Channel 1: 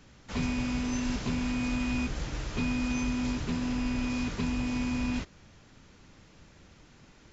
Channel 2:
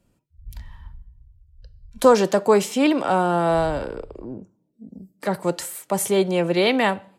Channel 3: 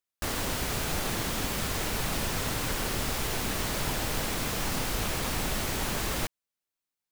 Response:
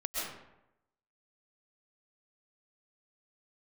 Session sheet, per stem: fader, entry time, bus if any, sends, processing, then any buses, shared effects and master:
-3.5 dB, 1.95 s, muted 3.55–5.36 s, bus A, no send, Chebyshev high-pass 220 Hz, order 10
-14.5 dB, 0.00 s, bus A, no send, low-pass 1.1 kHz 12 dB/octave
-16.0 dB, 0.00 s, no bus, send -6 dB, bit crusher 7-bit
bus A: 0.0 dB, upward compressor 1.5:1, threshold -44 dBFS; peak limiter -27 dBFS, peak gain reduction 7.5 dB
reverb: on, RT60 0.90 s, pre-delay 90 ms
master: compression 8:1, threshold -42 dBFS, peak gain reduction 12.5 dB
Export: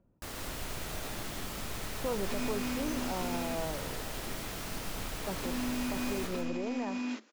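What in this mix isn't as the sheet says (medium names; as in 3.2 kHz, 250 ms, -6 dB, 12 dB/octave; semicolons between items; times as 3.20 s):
stem 3: send -6 dB -> 0 dB; master: missing compression 8:1, threshold -42 dBFS, peak gain reduction 12.5 dB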